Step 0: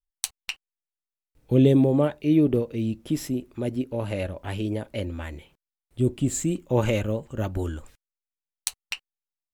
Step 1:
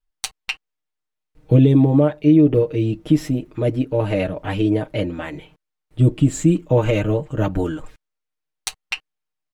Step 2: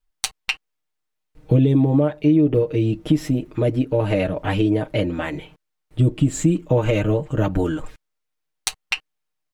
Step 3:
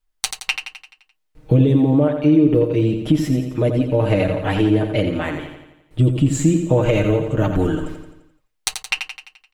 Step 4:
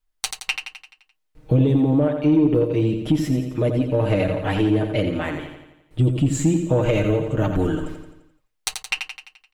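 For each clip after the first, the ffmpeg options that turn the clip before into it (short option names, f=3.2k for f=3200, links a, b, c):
-af "lowpass=f=2.7k:p=1,aecho=1:1:6.5:0.91,alimiter=limit=-11.5dB:level=0:latency=1:release=322,volume=7dB"
-af "acompressor=threshold=-21dB:ratio=2,volume=3.5dB"
-af "aecho=1:1:86|172|258|344|430|516|602:0.422|0.228|0.123|0.0664|0.0359|0.0194|0.0105,volume=1.5dB"
-af "asoftclip=type=tanh:threshold=-5dB,volume=-2dB"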